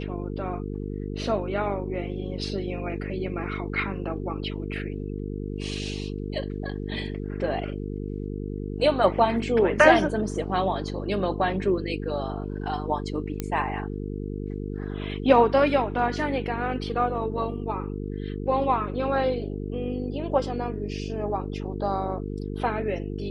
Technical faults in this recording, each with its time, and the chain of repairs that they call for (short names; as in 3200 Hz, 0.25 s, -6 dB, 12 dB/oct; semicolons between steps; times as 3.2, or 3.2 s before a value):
buzz 50 Hz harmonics 9 -32 dBFS
13.4 pop -14 dBFS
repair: de-click; de-hum 50 Hz, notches 9